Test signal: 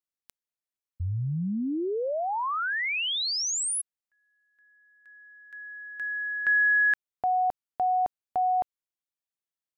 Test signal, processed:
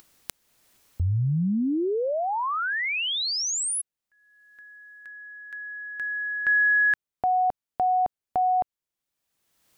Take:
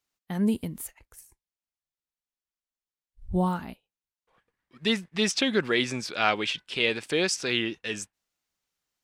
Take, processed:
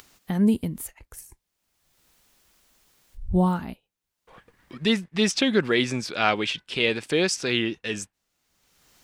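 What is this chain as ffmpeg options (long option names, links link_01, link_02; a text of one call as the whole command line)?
ffmpeg -i in.wav -filter_complex "[0:a]asplit=2[link_01][link_02];[link_02]acompressor=mode=upward:threshold=-30dB:ratio=2.5:attack=35:release=575:knee=2.83:detection=peak,volume=-1.5dB[link_03];[link_01][link_03]amix=inputs=2:normalize=0,lowshelf=frequency=400:gain=4.5,volume=-4dB" out.wav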